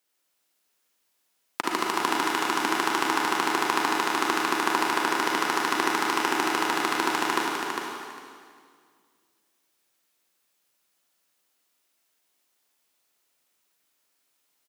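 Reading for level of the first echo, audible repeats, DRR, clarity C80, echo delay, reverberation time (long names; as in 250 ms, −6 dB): −5.5 dB, 2, −3.5 dB, −1.0 dB, 403 ms, 2.0 s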